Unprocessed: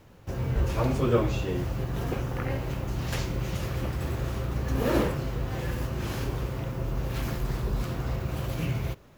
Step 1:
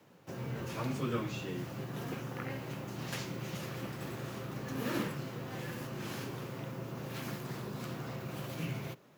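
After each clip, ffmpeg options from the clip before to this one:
ffmpeg -i in.wav -filter_complex "[0:a]highpass=frequency=140:width=0.5412,highpass=frequency=140:width=1.3066,acrossover=split=310|1000|4700[link_01][link_02][link_03][link_04];[link_02]acompressor=threshold=-41dB:ratio=6[link_05];[link_01][link_05][link_03][link_04]amix=inputs=4:normalize=0,volume=-5dB" out.wav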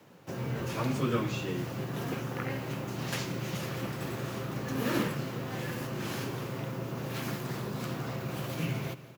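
ffmpeg -i in.wav -af "aecho=1:1:174|348|522|696|870:0.133|0.0747|0.0418|0.0234|0.0131,volume=5dB" out.wav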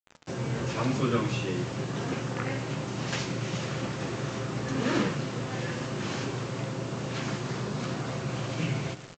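ffmpeg -i in.wav -af "aresample=16000,acrusher=bits=7:mix=0:aa=0.000001,aresample=44100,flanger=delay=9.2:depth=9.4:regen=82:speed=1:shape=triangular,volume=7.5dB" out.wav

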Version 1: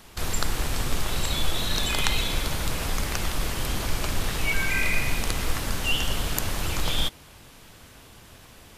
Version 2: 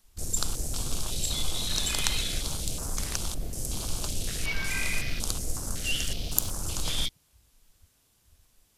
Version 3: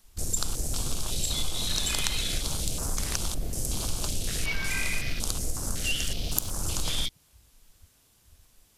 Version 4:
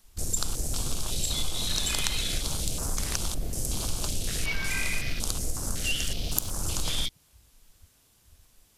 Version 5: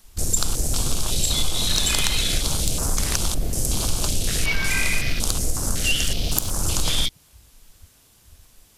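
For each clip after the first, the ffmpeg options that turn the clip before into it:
ffmpeg -i in.wav -af "bass=frequency=250:gain=2,treble=frequency=4000:gain=12,afwtdn=0.0316,volume=-7dB" out.wav
ffmpeg -i in.wav -af "acompressor=threshold=-29dB:ratio=2.5,volume=4dB" out.wav
ffmpeg -i in.wav -af anull out.wav
ffmpeg -i in.wav -af "asoftclip=type=tanh:threshold=-10dB,volume=7.5dB" out.wav

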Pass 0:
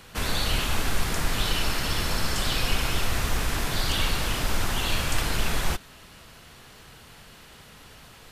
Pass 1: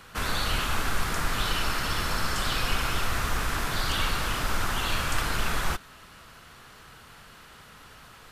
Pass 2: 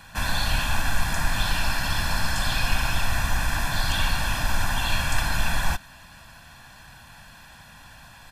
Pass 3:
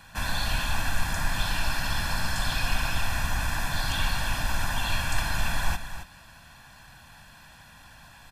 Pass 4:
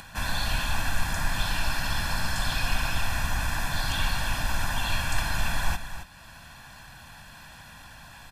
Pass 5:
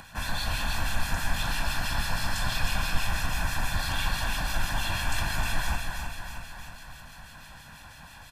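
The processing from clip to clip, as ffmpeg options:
ffmpeg -i in.wav -af "equalizer=frequency=1300:width=1.6:gain=7.5,volume=-3dB" out.wav
ffmpeg -i in.wav -af "aecho=1:1:1.2:0.84" out.wav
ffmpeg -i in.wav -af "aecho=1:1:270:0.299,volume=-3.5dB" out.wav
ffmpeg -i in.wav -af "acompressor=mode=upward:threshold=-40dB:ratio=2.5" out.wav
ffmpeg -i in.wav -filter_complex "[0:a]asplit=2[link_01][link_02];[link_02]aecho=0:1:312|624|936|1248|1560|1872|2184|2496:0.501|0.291|0.169|0.0978|0.0567|0.0329|0.0191|0.0111[link_03];[link_01][link_03]amix=inputs=2:normalize=0,acrossover=split=1900[link_04][link_05];[link_04]aeval=exprs='val(0)*(1-0.5/2+0.5/2*cos(2*PI*6.1*n/s))':channel_layout=same[link_06];[link_05]aeval=exprs='val(0)*(1-0.5/2-0.5/2*cos(2*PI*6.1*n/s))':channel_layout=same[link_07];[link_06][link_07]amix=inputs=2:normalize=0" out.wav

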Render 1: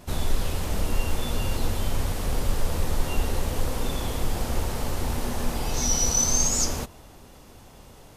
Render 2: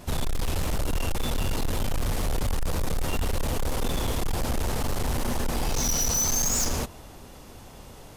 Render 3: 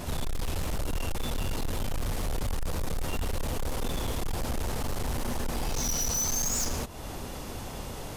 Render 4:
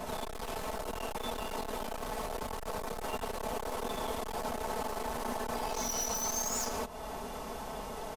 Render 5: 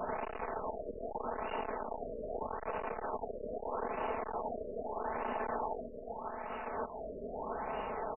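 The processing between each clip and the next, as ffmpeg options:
ffmpeg -i in.wav -af "asoftclip=type=hard:threshold=-25dB,volume=3dB" out.wav
ffmpeg -i in.wav -af "alimiter=level_in=9.5dB:limit=-24dB:level=0:latency=1:release=247,volume=-9.5dB,volume=7.5dB" out.wav
ffmpeg -i in.wav -filter_complex "[0:a]equalizer=frequency=810:width_type=o:width=1.9:gain=10,aecho=1:1:4.6:0.65,acrossover=split=210[link_01][link_02];[link_01]asoftclip=type=tanh:threshold=-34.5dB[link_03];[link_03][link_02]amix=inputs=2:normalize=0,volume=-7.5dB" out.wav
ffmpeg -i in.wav -af "bass=frequency=250:gain=-9,treble=frequency=4000:gain=3,alimiter=level_in=4.5dB:limit=-24dB:level=0:latency=1:release=404,volume=-4.5dB,afftfilt=real='re*lt(b*sr/1024,630*pow(3000/630,0.5+0.5*sin(2*PI*0.8*pts/sr)))':imag='im*lt(b*sr/1024,630*pow(3000/630,0.5+0.5*sin(2*PI*0.8*pts/sr)))':win_size=1024:overlap=0.75,volume=3.5dB" out.wav

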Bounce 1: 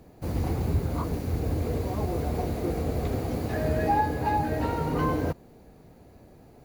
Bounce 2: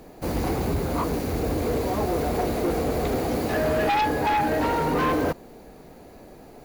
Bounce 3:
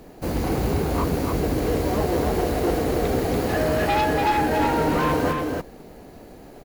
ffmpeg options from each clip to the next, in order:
ffmpeg -i in.wav -filter_complex "[0:a]equalizer=frequency=95:width=0.77:gain=-12,asplit=2[link_01][link_02];[link_02]aeval=exprs='0.188*sin(PI/2*3.98*val(0)/0.188)':channel_layout=same,volume=-10dB[link_03];[link_01][link_03]amix=inputs=2:normalize=0" out.wav
ffmpeg -i in.wav -filter_complex "[0:a]asplit=2[link_01][link_02];[link_02]acrusher=samples=37:mix=1:aa=0.000001,volume=-12dB[link_03];[link_01][link_03]amix=inputs=2:normalize=0,aecho=1:1:287:0.631" out.wav

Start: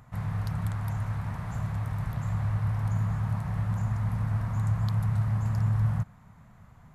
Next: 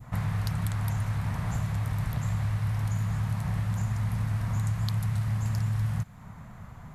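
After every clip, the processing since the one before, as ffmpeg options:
ffmpeg -i in.wav -filter_complex "[0:a]adynamicequalizer=threshold=0.00224:dfrequency=1300:dqfactor=0.74:tfrequency=1300:tqfactor=0.74:attack=5:release=100:ratio=0.375:range=1.5:mode=cutabove:tftype=bell,acrossover=split=1900[link_01][link_02];[link_01]acompressor=threshold=-35dB:ratio=5[link_03];[link_03][link_02]amix=inputs=2:normalize=0,volume=8.5dB" out.wav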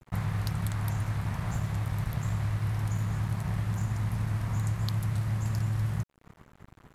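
ffmpeg -i in.wav -af "aeval=exprs='sgn(val(0))*max(abs(val(0))-0.00708,0)':channel_layout=same" out.wav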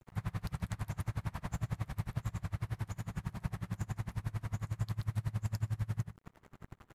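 ffmpeg -i in.wav -filter_complex "[0:a]acompressor=threshold=-34dB:ratio=4,asplit=2[link_01][link_02];[link_02]adelay=128.3,volume=-7dB,highshelf=frequency=4000:gain=-2.89[link_03];[link_01][link_03]amix=inputs=2:normalize=0,aeval=exprs='val(0)*pow(10,-28*(0.5-0.5*cos(2*PI*11*n/s))/20)':channel_layout=same,volume=4dB" out.wav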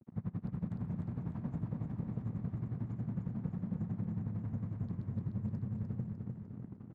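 ffmpeg -i in.wav -af "bandpass=frequency=230:width_type=q:width=2.6:csg=0,asoftclip=type=tanh:threshold=-37dB,aecho=1:1:301|602|903|1204|1505|1806|2107:0.631|0.334|0.177|0.0939|0.0498|0.0264|0.014,volume=10.5dB" out.wav

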